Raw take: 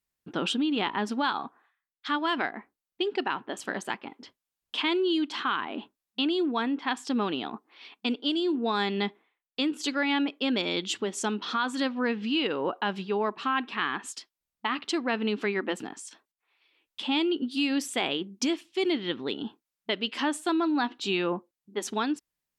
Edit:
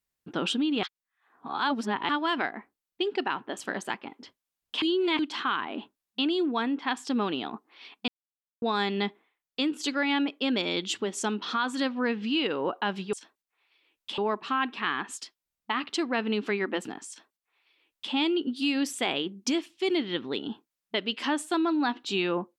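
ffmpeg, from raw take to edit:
ffmpeg -i in.wav -filter_complex "[0:a]asplit=9[link_01][link_02][link_03][link_04][link_05][link_06][link_07][link_08][link_09];[link_01]atrim=end=0.832[link_10];[link_02]atrim=start=0.828:end=2.092,asetpts=PTS-STARTPTS,areverse[link_11];[link_03]atrim=start=2.088:end=4.822[link_12];[link_04]atrim=start=4.818:end=5.192,asetpts=PTS-STARTPTS,areverse[link_13];[link_05]atrim=start=5.188:end=8.08,asetpts=PTS-STARTPTS,afade=type=out:start_time=2.888:duration=0.004:curve=hsin[link_14];[link_06]atrim=start=8.08:end=8.62,asetpts=PTS-STARTPTS,volume=0[link_15];[link_07]atrim=start=8.62:end=13.132,asetpts=PTS-STARTPTS,afade=type=in:duration=0.004:curve=hsin[link_16];[link_08]atrim=start=16.028:end=17.082[link_17];[link_09]atrim=start=13.128[link_18];[link_10][link_11]acrossfade=duration=0.004:curve1=hsin:curve2=hsin[link_19];[link_19][link_12]acrossfade=duration=0.004:curve1=hsin:curve2=hsin[link_20];[link_20][link_13]acrossfade=duration=0.004:curve1=hsin:curve2=hsin[link_21];[link_14][link_15][link_16]concat=n=3:v=0:a=1[link_22];[link_21][link_22]acrossfade=duration=0.004:curve1=hsin:curve2=hsin[link_23];[link_23][link_17]acrossfade=duration=0.004:curve1=hsin:curve2=hsin[link_24];[link_24][link_18]acrossfade=duration=0.004:curve1=hsin:curve2=hsin" out.wav

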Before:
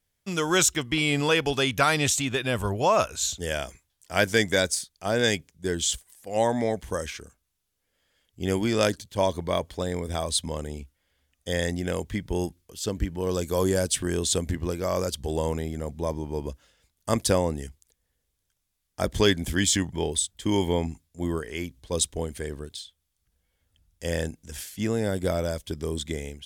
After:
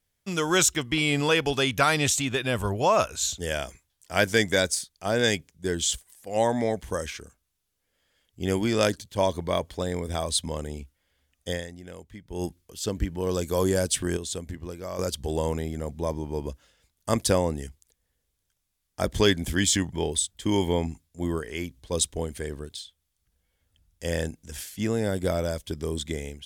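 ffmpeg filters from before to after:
ffmpeg -i in.wav -filter_complex "[0:a]asplit=5[link_01][link_02][link_03][link_04][link_05];[link_01]atrim=end=11.71,asetpts=PTS-STARTPTS,afade=type=out:start_time=11.5:duration=0.21:curve=qua:silence=0.199526[link_06];[link_02]atrim=start=11.71:end=12.24,asetpts=PTS-STARTPTS,volume=-14dB[link_07];[link_03]atrim=start=12.24:end=14.172,asetpts=PTS-STARTPTS,afade=type=in:duration=0.21:curve=qua:silence=0.199526[link_08];[link_04]atrim=start=14.168:end=14.992,asetpts=PTS-STARTPTS,volume=-8dB[link_09];[link_05]atrim=start=14.988[link_10];[link_06][link_07][link_08]concat=n=3:v=0:a=1[link_11];[link_11][link_09]acrossfade=duration=0.004:curve1=hsin:curve2=hsin[link_12];[link_12][link_10]acrossfade=duration=0.004:curve1=hsin:curve2=hsin" out.wav

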